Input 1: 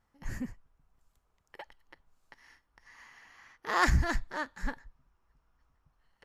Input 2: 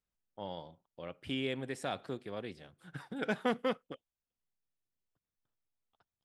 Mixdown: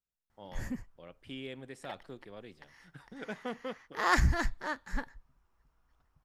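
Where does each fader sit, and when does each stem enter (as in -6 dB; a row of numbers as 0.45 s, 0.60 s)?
-0.5 dB, -7.0 dB; 0.30 s, 0.00 s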